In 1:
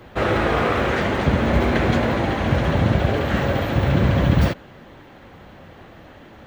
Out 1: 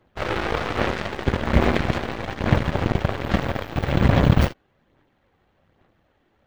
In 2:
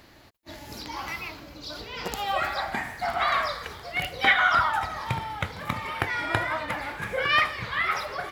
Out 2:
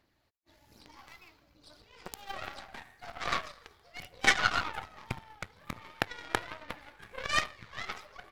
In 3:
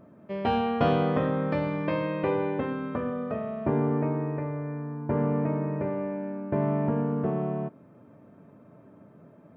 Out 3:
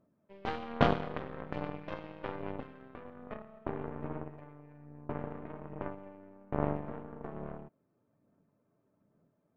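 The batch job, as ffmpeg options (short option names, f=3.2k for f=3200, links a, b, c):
-af "aphaser=in_gain=1:out_gain=1:delay=2.7:decay=0.31:speed=1.2:type=sinusoidal,aeval=exprs='0.794*(cos(1*acos(clip(val(0)/0.794,-1,1)))-cos(1*PI/2))+0.0355*(cos(3*acos(clip(val(0)/0.794,-1,1)))-cos(3*PI/2))+0.0891*(cos(7*acos(clip(val(0)/0.794,-1,1)))-cos(7*PI/2))+0.0282*(cos(8*acos(clip(val(0)/0.794,-1,1)))-cos(8*PI/2))':c=same"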